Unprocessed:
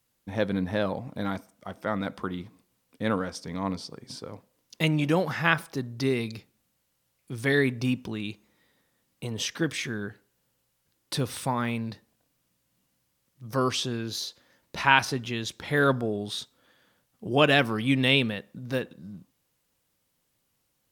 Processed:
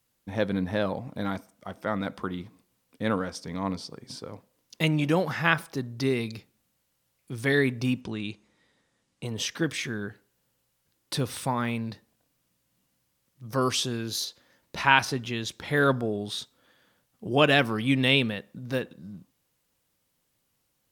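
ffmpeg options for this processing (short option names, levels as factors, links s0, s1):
-filter_complex "[0:a]asettb=1/sr,asplit=3[s0][s1][s2];[s0]atrim=end=8.014[s3];[s1]atrim=start=8.01:end=9.25,asetpts=PTS-STARTPTS,afade=t=in:d=0.004:c=qsin,afade=t=out:st=1.236:d=0.004:c=qsin,lowpass=f=9300:w=0.5412,lowpass=f=9300:w=1.3066[s4];[s2]atrim=start=9.246[s5];[s3][s4]acrossfade=d=0.004:c1=hsin:c2=qsin[s6];[s6][s5]acrossfade=d=0.004:c1=qsin:c2=hsin,asettb=1/sr,asplit=3[s7][s8][s9];[s7]atrim=end=13.624[s10];[s8]atrim=start=13.62:end=14.25,asetpts=PTS-STARTPTS,afade=t=in:d=0.004:c=qsin,afade=t=out:st=0.626:d=0.004:c=qsin,equalizer=f=11000:w=0.59:g=7[s11];[s9]atrim=start=14.246[s12];[s10][s11]acrossfade=d=0.004:c1=hsin:c2=qsin[s13];[s13][s12]acrossfade=d=0.004:c1=qsin:c2=hsin"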